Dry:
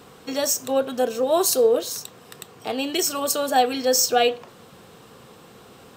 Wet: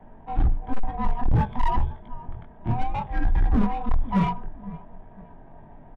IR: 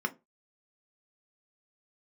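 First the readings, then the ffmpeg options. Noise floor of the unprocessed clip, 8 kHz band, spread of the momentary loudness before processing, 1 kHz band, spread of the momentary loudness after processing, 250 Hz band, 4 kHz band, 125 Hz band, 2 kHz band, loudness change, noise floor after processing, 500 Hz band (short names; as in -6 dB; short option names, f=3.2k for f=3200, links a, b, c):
-48 dBFS, under -40 dB, 13 LU, -3.5 dB, 16 LU, +1.0 dB, -23.0 dB, +23.0 dB, -8.0 dB, -5.5 dB, -47 dBFS, -19.0 dB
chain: -af "afftfilt=real='real(if(lt(b,1008),b+24*(1-2*mod(floor(b/24),2)),b),0)':imag='imag(if(lt(b,1008),b+24*(1-2*mod(floor(b/24),2)),b),0)':win_size=2048:overlap=0.75,bandreject=f=50:t=h:w=6,bandreject=f=100:t=h:w=6,bandreject=f=150:t=h:w=6,acontrast=79,tremolo=f=270:d=0.519,aecho=1:1:508|1016:0.0944|0.0283,flanger=delay=18.5:depth=4.2:speed=0.97,aresample=8000,asoftclip=type=tanh:threshold=-15dB,aresample=44100,adynamicequalizer=threshold=0.00708:dfrequency=140:dqfactor=1.9:tfrequency=140:tqfactor=1.9:attack=5:release=100:ratio=0.375:range=3.5:mode=cutabove:tftype=bell,afreqshift=-23,adynamicsmooth=sensitivity=1:basefreq=1.2k,aemphasis=mode=reproduction:type=riaa,asoftclip=type=hard:threshold=-10.5dB,volume=-4.5dB"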